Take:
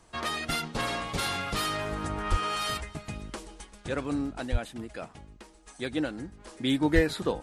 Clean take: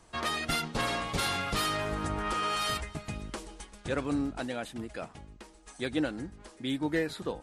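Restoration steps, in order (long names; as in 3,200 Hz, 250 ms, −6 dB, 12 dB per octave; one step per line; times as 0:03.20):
0:02.30–0:02.42: high-pass filter 140 Hz 24 dB per octave
0:04.51–0:04.63: high-pass filter 140 Hz 24 dB per octave
0:06.47: level correction −6 dB
0:06.94–0:07.06: high-pass filter 140 Hz 24 dB per octave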